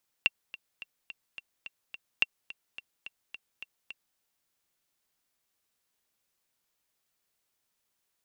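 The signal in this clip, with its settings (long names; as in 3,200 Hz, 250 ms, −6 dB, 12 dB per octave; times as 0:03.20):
click track 214 BPM, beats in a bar 7, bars 2, 2,730 Hz, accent 18.5 dB −9.5 dBFS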